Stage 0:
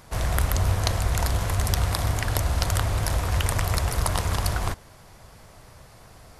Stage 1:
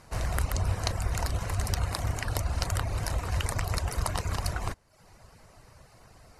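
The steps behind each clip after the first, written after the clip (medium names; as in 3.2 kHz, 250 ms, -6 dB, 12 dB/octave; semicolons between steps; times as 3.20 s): low-pass 11 kHz 12 dB/octave; reverb removal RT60 0.63 s; band-stop 3.4 kHz, Q 8; trim -4 dB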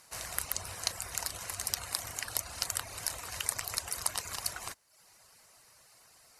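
tilt EQ +4 dB/octave; trim -7.5 dB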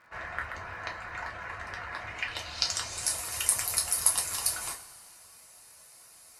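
low-pass sweep 1.7 kHz -> 11 kHz, 1.96–3.19 s; two-slope reverb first 0.23 s, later 2 s, from -18 dB, DRR -1.5 dB; crackle 76 per s -52 dBFS; trim -1 dB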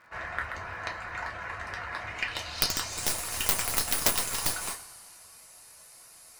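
tracing distortion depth 0.37 ms; trim +2 dB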